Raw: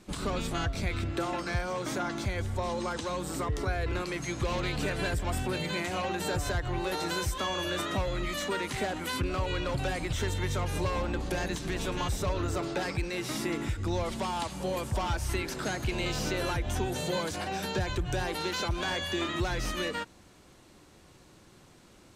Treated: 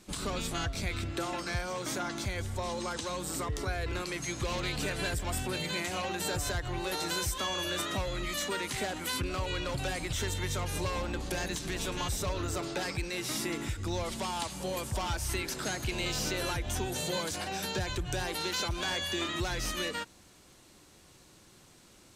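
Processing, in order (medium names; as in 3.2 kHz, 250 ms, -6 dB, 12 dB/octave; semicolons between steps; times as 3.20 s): treble shelf 3.1 kHz +8.5 dB; trim -3.5 dB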